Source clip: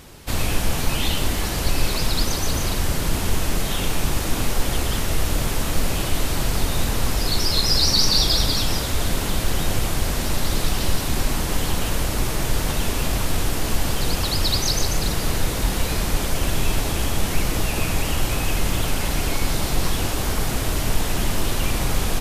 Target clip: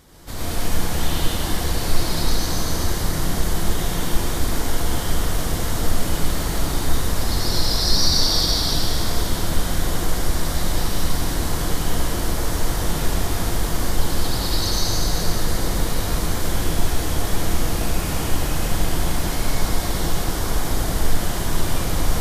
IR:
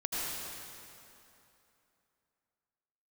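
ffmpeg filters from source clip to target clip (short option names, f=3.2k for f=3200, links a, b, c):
-filter_complex "[0:a]equalizer=f=2.6k:t=o:w=0.29:g=-8[a];[1:a]atrim=start_sample=2205[b];[a][b]afir=irnorm=-1:irlink=0,volume=-6dB"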